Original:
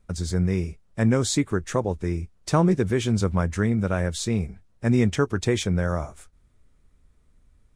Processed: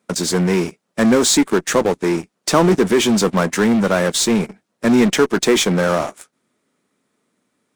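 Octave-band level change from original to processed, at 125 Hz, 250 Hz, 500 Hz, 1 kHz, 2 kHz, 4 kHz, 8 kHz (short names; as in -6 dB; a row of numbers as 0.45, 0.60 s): -1.0, +8.0, +10.0, +10.0, +10.5, +13.0, +12.5 dB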